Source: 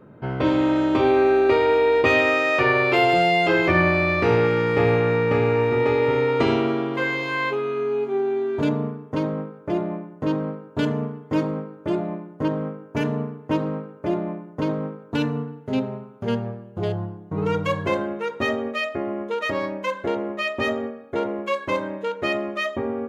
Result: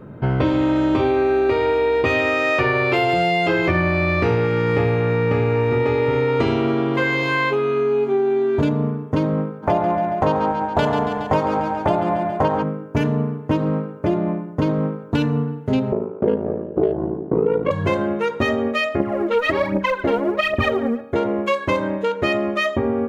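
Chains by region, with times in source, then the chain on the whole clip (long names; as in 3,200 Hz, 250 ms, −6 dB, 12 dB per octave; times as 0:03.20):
0:09.62–0:12.62: ceiling on every frequency bin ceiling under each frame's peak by 13 dB + parametric band 780 Hz +13 dB 0.89 octaves + repeating echo 139 ms, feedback 49%, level −8.5 dB
0:15.92–0:17.71: band-pass filter 200–2,400 Hz + parametric band 400 Hz +15 dB 1.5 octaves + ring modulation 27 Hz
0:19.00–0:21.01: low-pass filter 4,500 Hz + phase shifter 1.3 Hz, delay 4.4 ms, feedback 69%
whole clip: low-shelf EQ 120 Hz +10.5 dB; downward compressor, threshold −22 dBFS; level +6.5 dB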